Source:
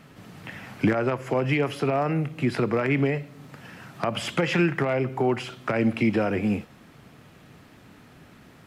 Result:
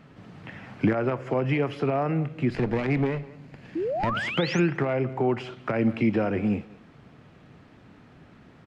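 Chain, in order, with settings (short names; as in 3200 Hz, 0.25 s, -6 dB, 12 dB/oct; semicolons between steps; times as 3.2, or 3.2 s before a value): 2.5–4.17 minimum comb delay 0.44 ms; high shelf 4600 Hz +9 dB; 3.75–4.6 painted sound rise 300–7000 Hz -26 dBFS; tape spacing loss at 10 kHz 26 dB; speakerphone echo 0.2 s, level -19 dB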